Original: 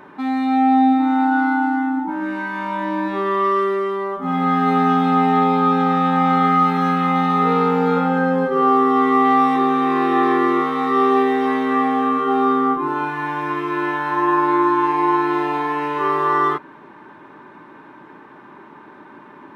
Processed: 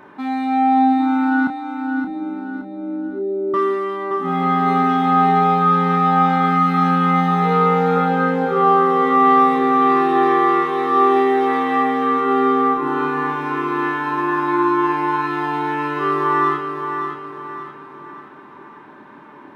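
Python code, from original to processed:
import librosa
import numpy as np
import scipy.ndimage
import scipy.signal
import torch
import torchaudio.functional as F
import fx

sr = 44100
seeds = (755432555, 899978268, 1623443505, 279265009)

y = fx.steep_lowpass(x, sr, hz=580.0, slope=72, at=(1.47, 3.54))
y = fx.doubler(y, sr, ms=28.0, db=-8.0)
y = fx.echo_feedback(y, sr, ms=572, feedback_pct=43, wet_db=-7)
y = y * 10.0 ** (-1.5 / 20.0)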